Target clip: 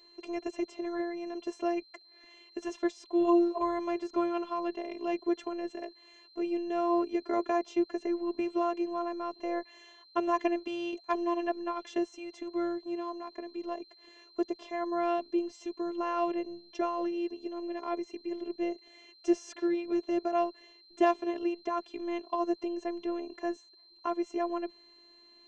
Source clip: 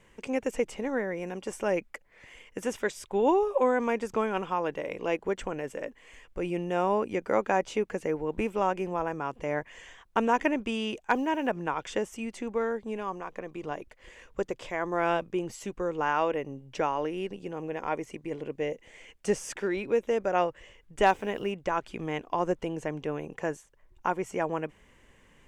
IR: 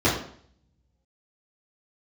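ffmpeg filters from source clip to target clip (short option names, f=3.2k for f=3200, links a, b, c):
-af "highpass=f=130:w=0.5412,highpass=f=130:w=1.3066,equalizer=f=460:t=q:w=4:g=8,equalizer=f=1.5k:t=q:w=4:g=-8,equalizer=f=2.3k:t=q:w=4:g=-7,equalizer=f=4.2k:t=q:w=4:g=-7,lowpass=f=6k:w=0.5412,lowpass=f=6k:w=1.3066,aeval=exprs='val(0)+0.002*sin(2*PI*4200*n/s)':c=same,afftfilt=real='hypot(re,im)*cos(PI*b)':imag='0':win_size=512:overlap=0.75"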